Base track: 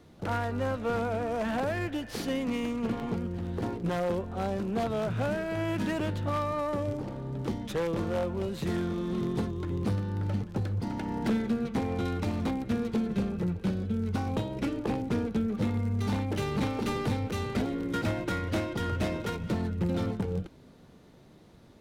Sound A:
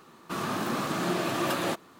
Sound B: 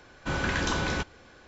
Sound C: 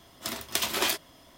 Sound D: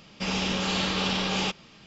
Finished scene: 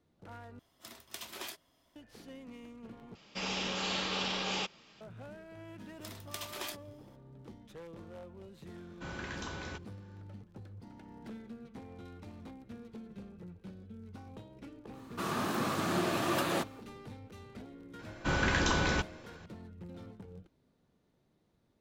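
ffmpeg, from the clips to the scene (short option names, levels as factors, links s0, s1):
-filter_complex "[3:a]asplit=2[s0][s1];[2:a]asplit=2[s2][s3];[0:a]volume=0.119[s4];[4:a]bass=f=250:g=-7,treble=f=4000:g=0[s5];[s2]highpass=47[s6];[s4]asplit=3[s7][s8][s9];[s7]atrim=end=0.594[s10];[s0]atrim=end=1.37,asetpts=PTS-STARTPTS,volume=0.15[s11];[s8]atrim=start=1.956:end=3.154[s12];[s5]atrim=end=1.86,asetpts=PTS-STARTPTS,volume=0.473[s13];[s9]atrim=start=5.006[s14];[s1]atrim=end=1.37,asetpts=PTS-STARTPTS,volume=0.188,afade=t=in:d=0.004:c=hsin,afade=t=out:st=1.366:d=0.004:c=hsin,adelay=5790[s15];[s6]atrim=end=1.47,asetpts=PTS-STARTPTS,volume=0.211,afade=t=in:d=0.004:c=hsin,afade=t=out:st=1.466:d=0.004:c=hsin,adelay=8750[s16];[1:a]atrim=end=1.99,asetpts=PTS-STARTPTS,volume=0.708,afade=t=in:d=0.1,afade=t=out:st=1.89:d=0.1,adelay=14880[s17];[s3]atrim=end=1.47,asetpts=PTS-STARTPTS,volume=0.891,afade=t=in:d=0.004:c=hsin,afade=t=out:st=1.466:d=0.004:c=hsin,adelay=17990[s18];[s10][s11]acrossfade=d=0.004:c1=hsin:c2=hsin[s19];[s19][s12]acrossfade=d=0.004:c1=hsin:c2=hsin[s20];[s20][s13]acrossfade=d=0.004:c1=hsin:c2=hsin[s21];[s21][s14]acrossfade=d=0.004:c1=hsin:c2=hsin[s22];[s22][s15][s16][s17][s18]amix=inputs=5:normalize=0"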